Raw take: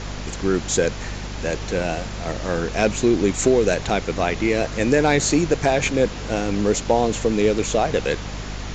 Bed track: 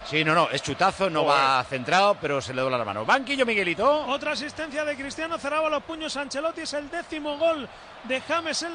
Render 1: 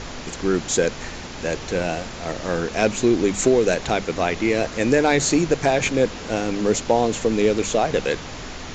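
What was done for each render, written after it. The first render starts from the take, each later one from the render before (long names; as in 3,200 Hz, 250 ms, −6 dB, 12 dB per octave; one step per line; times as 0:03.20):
mains-hum notches 50/100/150/200 Hz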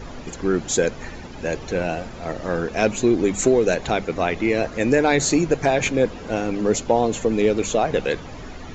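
broadband denoise 11 dB, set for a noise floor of −35 dBFS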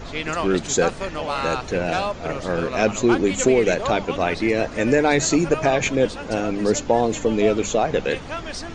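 mix in bed track −5.5 dB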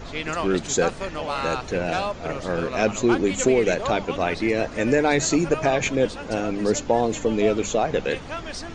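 level −2 dB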